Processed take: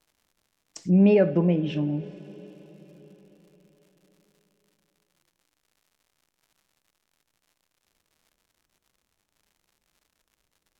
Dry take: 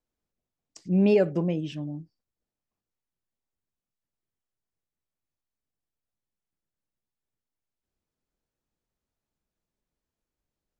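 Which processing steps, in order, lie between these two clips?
notch 4700 Hz, Q 15; two-slope reverb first 0.46 s, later 4.8 s, from -17 dB, DRR 10.5 dB; in parallel at +2 dB: compressor, threshold -30 dBFS, peak gain reduction 13 dB; on the sum: crackle 170/s -52 dBFS; treble ducked by the level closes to 3000 Hz, closed at -22 dBFS

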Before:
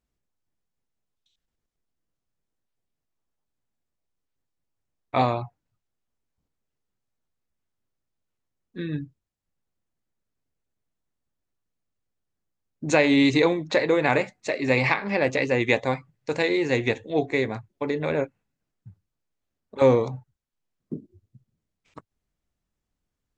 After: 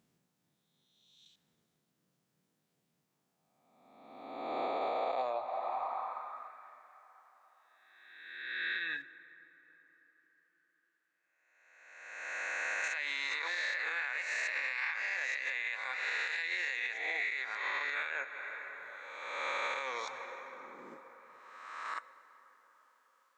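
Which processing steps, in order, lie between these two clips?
spectral swells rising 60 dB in 1.48 s; low shelf 110 Hz -5 dB; plate-style reverb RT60 4.9 s, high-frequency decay 0.45×, DRR 15.5 dB; high-pass sweep 160 Hz -> 1600 Hz, 3.47–6.7; compressor 4:1, threshold -37 dBFS, peak gain reduction 21.5 dB; 9.02–12.84 high shelf 2500 Hz -11 dB; limiter -31 dBFS, peak gain reduction 9.5 dB; gain +5 dB

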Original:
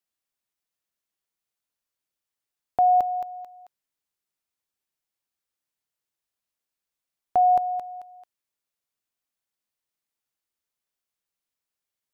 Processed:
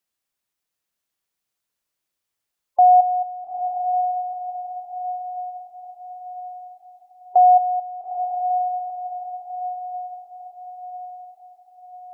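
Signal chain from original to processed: spectral gate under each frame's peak -20 dB strong; dynamic EQ 800 Hz, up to +3 dB, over -35 dBFS, Q 4.6; on a send: diffused feedback echo 0.888 s, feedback 52%, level -7 dB; on the sum: gain +4.5 dB

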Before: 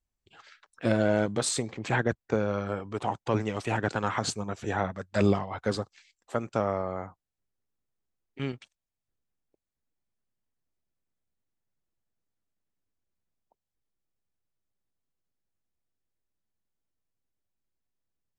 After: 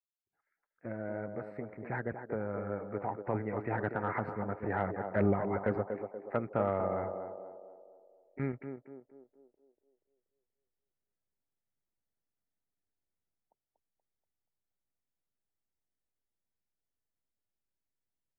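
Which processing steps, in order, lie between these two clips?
opening faded in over 5.93 s; gate -53 dBFS, range -8 dB; elliptic low-pass 2100 Hz, stop band 40 dB; notch 1100 Hz, Q 9.6; in parallel at -1 dB: compressor, threshold -39 dBFS, peak gain reduction 18 dB; on the sum: soft clip -13.5 dBFS, distortion -22 dB; on a send: narrowing echo 0.239 s, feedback 53%, band-pass 500 Hz, level -5 dB; on the sum: gain -3 dB

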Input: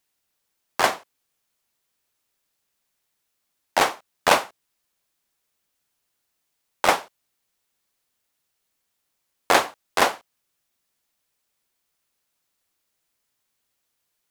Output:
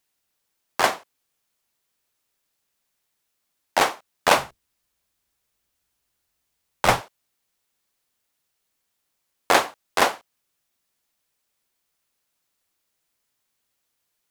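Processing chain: 4.37–7.01 octaver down 2 oct, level +4 dB

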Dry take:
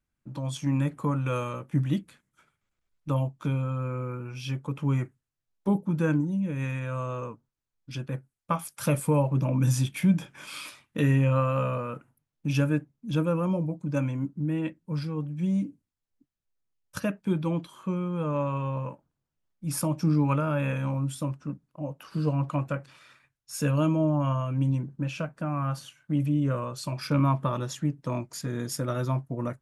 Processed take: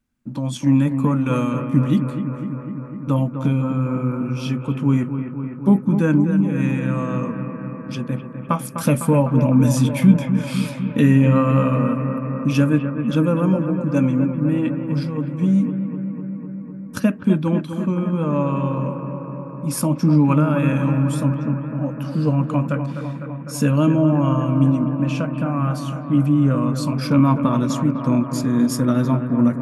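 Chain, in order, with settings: bell 240 Hz +13.5 dB 0.38 oct; on a send: analogue delay 0.252 s, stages 4096, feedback 76%, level -8.5 dB; on the sum: gain +5.5 dB

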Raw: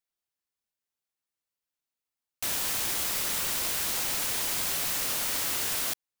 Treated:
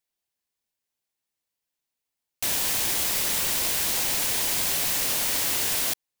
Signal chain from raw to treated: bell 1300 Hz -5 dB 0.44 oct; gain +4.5 dB

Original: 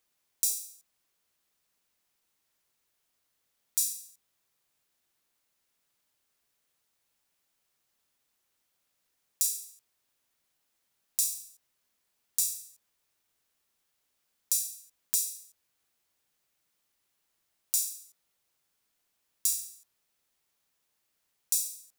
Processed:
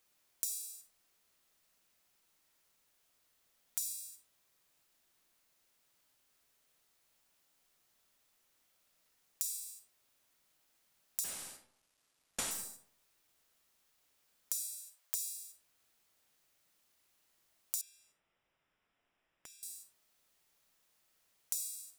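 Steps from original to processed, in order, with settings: 11.24–12.51 CVSD 64 kbps; 14.79–15.32 steep high-pass 510 Hz; digital reverb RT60 0.59 s, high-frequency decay 0.55×, pre-delay 0 ms, DRR 4.5 dB; compressor 8:1, threshold -36 dBFS, peak gain reduction 13.5 dB; 17.81–19.63 polynomial smoothing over 25 samples; gain +2 dB

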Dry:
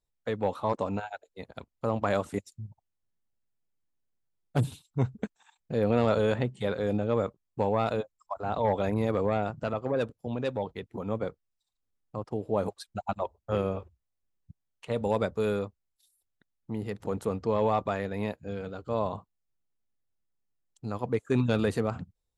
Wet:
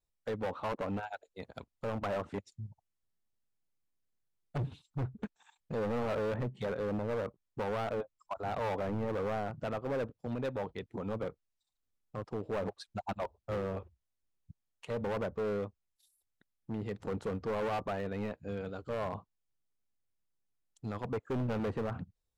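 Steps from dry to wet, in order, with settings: treble ducked by the level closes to 1600 Hz, closed at -24 dBFS; vibrato 0.33 Hz 7.5 cents; overloaded stage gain 28 dB; gain -2.5 dB

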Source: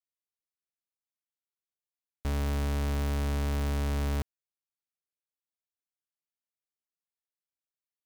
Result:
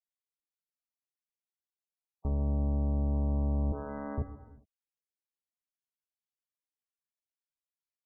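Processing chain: 2.29–3.13 high shelf 2100 Hz -8 dB; 3.72–4.18 HPF 240 Hz 24 dB/oct; treble ducked by the level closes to 680 Hz, closed at -28 dBFS; loudest bins only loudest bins 32; non-linear reverb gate 0.44 s falling, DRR 9.5 dB

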